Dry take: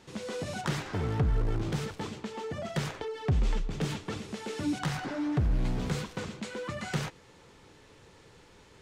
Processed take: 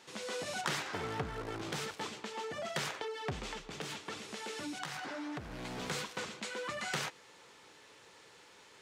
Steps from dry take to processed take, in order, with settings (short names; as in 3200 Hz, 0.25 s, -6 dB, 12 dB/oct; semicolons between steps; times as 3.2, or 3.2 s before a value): HPF 830 Hz 6 dB/oct; 3.44–5.71 compressor, threshold -40 dBFS, peak gain reduction 8 dB; gain +2 dB